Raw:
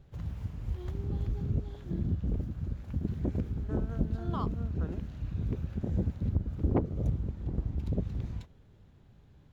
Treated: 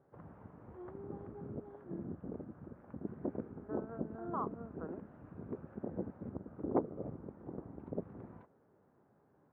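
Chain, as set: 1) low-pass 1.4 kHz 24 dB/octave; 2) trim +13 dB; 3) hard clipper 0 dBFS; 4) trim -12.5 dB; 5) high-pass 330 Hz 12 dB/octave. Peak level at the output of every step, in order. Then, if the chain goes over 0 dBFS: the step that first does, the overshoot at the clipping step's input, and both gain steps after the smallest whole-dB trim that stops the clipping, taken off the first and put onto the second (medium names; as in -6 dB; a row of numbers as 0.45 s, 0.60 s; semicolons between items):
-15.0 dBFS, -2.0 dBFS, -2.0 dBFS, -14.5 dBFS, -18.0 dBFS; nothing clips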